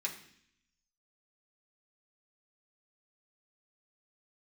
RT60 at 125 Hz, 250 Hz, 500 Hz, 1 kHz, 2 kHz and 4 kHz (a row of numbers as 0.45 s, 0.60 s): 0.95 s, 0.90 s, 0.65 s, 0.60 s, 0.80 s, 0.80 s